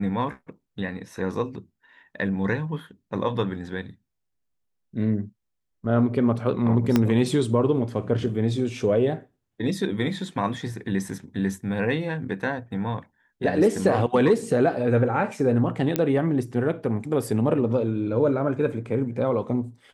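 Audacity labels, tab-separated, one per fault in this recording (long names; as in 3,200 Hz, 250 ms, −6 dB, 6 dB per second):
6.960000	6.960000	click −7 dBFS
15.960000	15.960000	click −8 dBFS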